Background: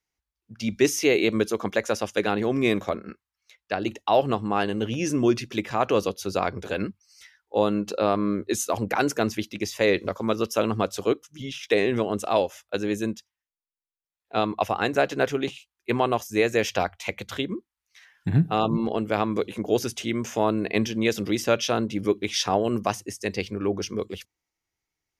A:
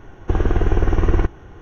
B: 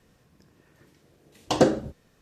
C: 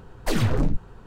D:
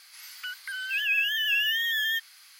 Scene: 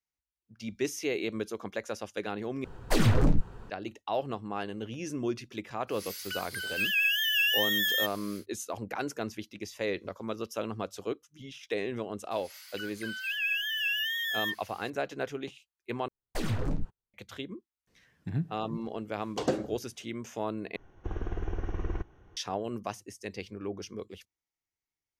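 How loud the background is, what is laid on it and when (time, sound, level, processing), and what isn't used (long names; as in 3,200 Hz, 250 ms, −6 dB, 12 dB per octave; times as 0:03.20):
background −11 dB
0:02.64: overwrite with C −1 dB
0:05.87: mix in D −4.5 dB, fades 0.10 s + high-shelf EQ 3,500 Hz +10 dB
0:12.31: mix in D −5 dB + all-pass dispersion lows, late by 81 ms, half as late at 1,600 Hz
0:16.08: overwrite with C −9 dB + noise gate −34 dBFS, range −44 dB
0:17.87: mix in B −10 dB
0:20.76: overwrite with A −17 dB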